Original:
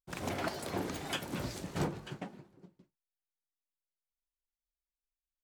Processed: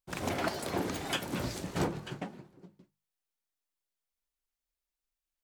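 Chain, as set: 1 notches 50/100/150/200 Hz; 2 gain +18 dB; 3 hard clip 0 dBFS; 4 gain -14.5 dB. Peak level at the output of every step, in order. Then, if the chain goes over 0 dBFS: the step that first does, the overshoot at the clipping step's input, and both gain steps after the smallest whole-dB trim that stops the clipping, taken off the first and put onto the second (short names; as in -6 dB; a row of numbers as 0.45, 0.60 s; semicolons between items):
-24.0, -6.0, -6.0, -20.5 dBFS; no overload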